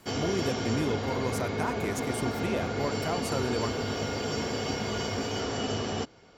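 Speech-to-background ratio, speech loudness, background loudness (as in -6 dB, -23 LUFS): -2.0 dB, -33.5 LUFS, -31.5 LUFS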